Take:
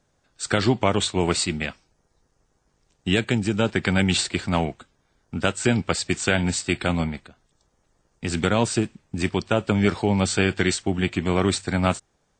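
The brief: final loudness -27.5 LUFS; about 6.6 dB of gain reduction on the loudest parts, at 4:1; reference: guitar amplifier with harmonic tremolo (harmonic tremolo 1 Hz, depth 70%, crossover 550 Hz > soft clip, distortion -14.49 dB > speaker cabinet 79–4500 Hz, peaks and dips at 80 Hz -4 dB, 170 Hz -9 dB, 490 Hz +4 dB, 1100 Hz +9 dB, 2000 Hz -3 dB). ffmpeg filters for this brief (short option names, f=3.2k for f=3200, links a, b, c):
-filter_complex "[0:a]acompressor=threshold=-23dB:ratio=4,acrossover=split=550[a][b];[a]aeval=exprs='val(0)*(1-0.7/2+0.7/2*cos(2*PI*1*n/s))':c=same[c];[b]aeval=exprs='val(0)*(1-0.7/2-0.7/2*cos(2*PI*1*n/s))':c=same[d];[c][d]amix=inputs=2:normalize=0,asoftclip=threshold=-23dB,highpass=79,equalizer=f=80:t=q:w=4:g=-4,equalizer=f=170:t=q:w=4:g=-9,equalizer=f=490:t=q:w=4:g=4,equalizer=f=1.1k:t=q:w=4:g=9,equalizer=f=2k:t=q:w=4:g=-3,lowpass=f=4.5k:w=0.5412,lowpass=f=4.5k:w=1.3066,volume=7.5dB"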